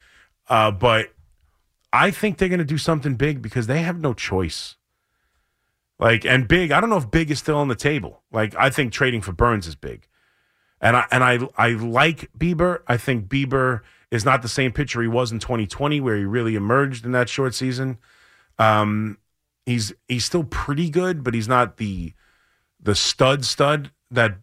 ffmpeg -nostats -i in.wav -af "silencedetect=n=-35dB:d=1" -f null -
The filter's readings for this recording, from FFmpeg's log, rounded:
silence_start: 4.71
silence_end: 6.00 | silence_duration: 1.29